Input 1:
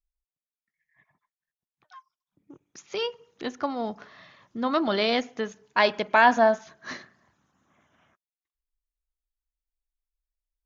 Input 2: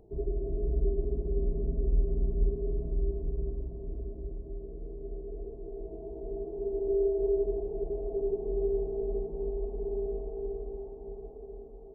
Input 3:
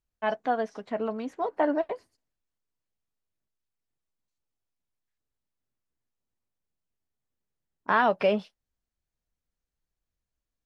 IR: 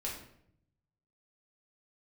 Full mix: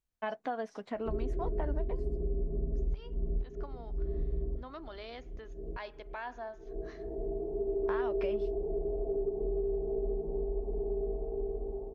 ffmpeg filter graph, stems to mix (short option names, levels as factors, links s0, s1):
-filter_complex "[0:a]highpass=f=270:w=0.5412,highpass=f=270:w=1.3066,highshelf=f=4700:g=-7.5,acompressor=threshold=0.0355:ratio=1.5,volume=0.133,asplit=2[s0][s1];[1:a]bandreject=f=50:t=h:w=6,bandreject=f=100:t=h:w=6,bandreject=f=150:t=h:w=6,bandreject=f=200:t=h:w=6,bandreject=f=250:t=h:w=6,bandreject=f=300:t=h:w=6,bandreject=f=350:t=h:w=6,bandreject=f=400:t=h:w=6,acontrast=68,adelay=950,volume=0.631[s2];[2:a]acompressor=threshold=0.0282:ratio=2.5,volume=0.75[s3];[s1]apad=whole_len=568615[s4];[s2][s4]sidechaincompress=threshold=0.001:ratio=8:attack=16:release=194[s5];[s0][s5][s3]amix=inputs=3:normalize=0,acompressor=threshold=0.0355:ratio=5"